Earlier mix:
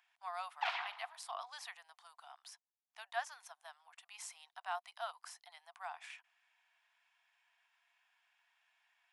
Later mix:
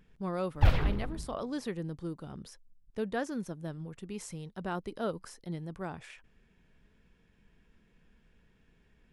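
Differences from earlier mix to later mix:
background: remove low-pass filter 5,600 Hz 12 dB per octave
master: remove Chebyshev high-pass with heavy ripple 690 Hz, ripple 3 dB

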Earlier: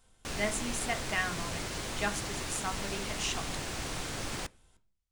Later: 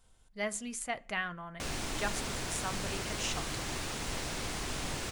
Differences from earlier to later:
speech: send −9.0 dB
background: entry +1.35 s

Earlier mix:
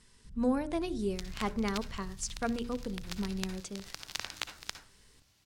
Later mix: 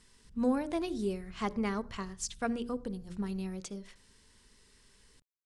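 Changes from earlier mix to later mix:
first sound −8.0 dB
second sound: muted

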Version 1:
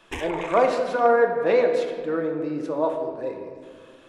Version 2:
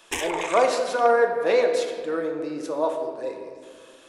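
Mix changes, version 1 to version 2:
background +3.0 dB
master: add bass and treble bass −10 dB, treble +12 dB

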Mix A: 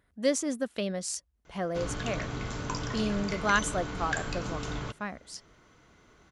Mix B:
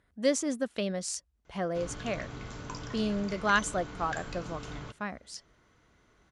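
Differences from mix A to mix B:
background −6.5 dB
master: add low-pass filter 10,000 Hz 12 dB per octave

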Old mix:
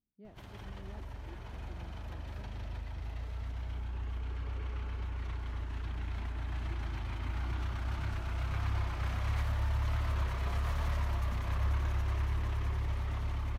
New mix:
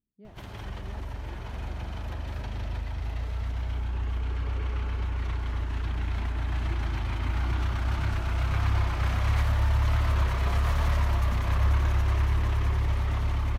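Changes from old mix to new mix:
speech +3.0 dB
background +8.0 dB

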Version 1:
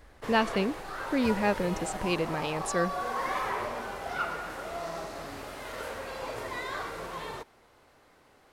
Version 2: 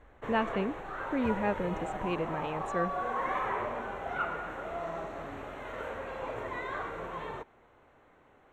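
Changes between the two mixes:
speech −3.5 dB
master: add moving average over 9 samples

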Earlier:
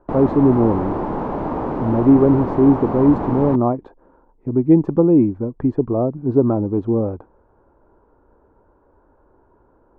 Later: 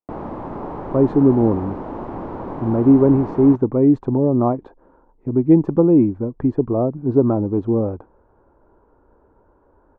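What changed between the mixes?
speech: entry +0.80 s
background −6.0 dB

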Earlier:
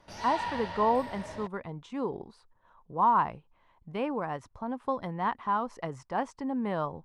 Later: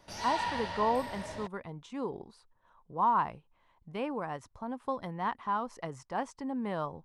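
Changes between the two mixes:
speech −3.5 dB
master: add high-shelf EQ 4,800 Hz +8 dB

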